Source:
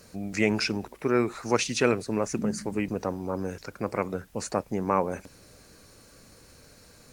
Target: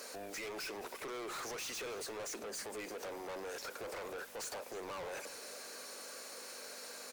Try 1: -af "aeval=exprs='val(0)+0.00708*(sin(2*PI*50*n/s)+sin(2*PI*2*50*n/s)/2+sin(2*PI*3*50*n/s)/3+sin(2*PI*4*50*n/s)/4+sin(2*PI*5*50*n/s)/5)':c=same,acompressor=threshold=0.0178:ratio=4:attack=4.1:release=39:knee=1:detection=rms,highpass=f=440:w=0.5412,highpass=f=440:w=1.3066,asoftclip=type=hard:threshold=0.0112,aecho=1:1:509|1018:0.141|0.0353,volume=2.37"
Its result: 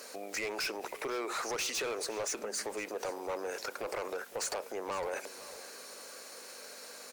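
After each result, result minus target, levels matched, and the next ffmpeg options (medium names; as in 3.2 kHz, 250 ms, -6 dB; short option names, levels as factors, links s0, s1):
echo 197 ms late; hard clipper: distortion -6 dB
-af "aeval=exprs='val(0)+0.00708*(sin(2*PI*50*n/s)+sin(2*PI*2*50*n/s)/2+sin(2*PI*3*50*n/s)/3+sin(2*PI*4*50*n/s)/4+sin(2*PI*5*50*n/s)/5)':c=same,acompressor=threshold=0.0178:ratio=4:attack=4.1:release=39:knee=1:detection=rms,highpass=f=440:w=0.5412,highpass=f=440:w=1.3066,asoftclip=type=hard:threshold=0.0112,aecho=1:1:312|624:0.141|0.0353,volume=2.37"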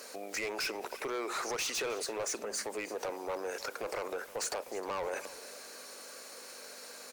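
hard clipper: distortion -6 dB
-af "aeval=exprs='val(0)+0.00708*(sin(2*PI*50*n/s)+sin(2*PI*2*50*n/s)/2+sin(2*PI*3*50*n/s)/3+sin(2*PI*4*50*n/s)/4+sin(2*PI*5*50*n/s)/5)':c=same,acompressor=threshold=0.0178:ratio=4:attack=4.1:release=39:knee=1:detection=rms,highpass=f=440:w=0.5412,highpass=f=440:w=1.3066,asoftclip=type=hard:threshold=0.00355,aecho=1:1:312|624:0.141|0.0353,volume=2.37"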